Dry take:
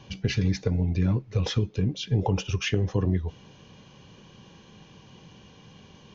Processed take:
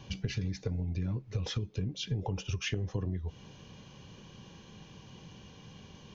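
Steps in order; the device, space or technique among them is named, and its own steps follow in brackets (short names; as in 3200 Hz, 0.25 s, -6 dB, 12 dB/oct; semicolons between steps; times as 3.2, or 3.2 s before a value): ASMR close-microphone chain (low shelf 130 Hz +5 dB; compressor 6:1, threshold -28 dBFS, peak gain reduction 11.5 dB; high shelf 6200 Hz +5.5 dB); gain -2.5 dB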